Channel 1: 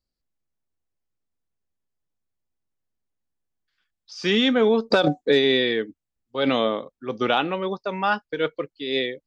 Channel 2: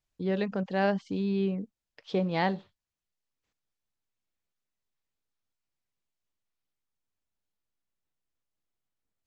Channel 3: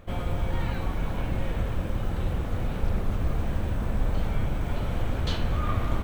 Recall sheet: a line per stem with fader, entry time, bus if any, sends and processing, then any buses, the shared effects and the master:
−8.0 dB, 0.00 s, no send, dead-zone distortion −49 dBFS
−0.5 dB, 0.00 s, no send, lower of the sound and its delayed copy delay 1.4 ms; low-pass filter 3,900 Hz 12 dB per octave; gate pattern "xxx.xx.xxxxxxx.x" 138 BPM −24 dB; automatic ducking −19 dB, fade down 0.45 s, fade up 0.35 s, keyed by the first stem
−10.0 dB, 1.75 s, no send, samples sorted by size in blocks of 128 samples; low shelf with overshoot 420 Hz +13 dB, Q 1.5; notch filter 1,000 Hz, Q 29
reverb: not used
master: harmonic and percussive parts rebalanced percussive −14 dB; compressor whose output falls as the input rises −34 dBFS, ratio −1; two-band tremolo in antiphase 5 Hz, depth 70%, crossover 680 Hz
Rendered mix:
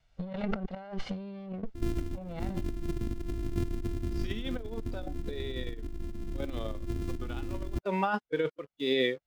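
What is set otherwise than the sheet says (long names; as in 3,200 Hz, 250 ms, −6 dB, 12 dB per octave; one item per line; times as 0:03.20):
stem 2 −0.5 dB → +11.0 dB
master: missing two-band tremolo in antiphase 5 Hz, depth 70%, crossover 680 Hz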